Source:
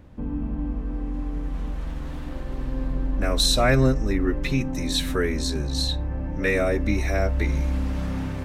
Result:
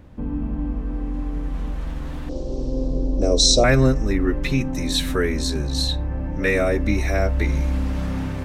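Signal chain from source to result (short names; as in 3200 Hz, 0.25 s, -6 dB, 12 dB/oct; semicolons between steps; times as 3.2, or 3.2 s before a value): 2.29–3.64 EQ curve 210 Hz 0 dB, 460 Hz +10 dB, 1800 Hz -22 dB, 5600 Hz +11 dB, 8500 Hz -1 dB, 12000 Hz -27 dB; gain +2.5 dB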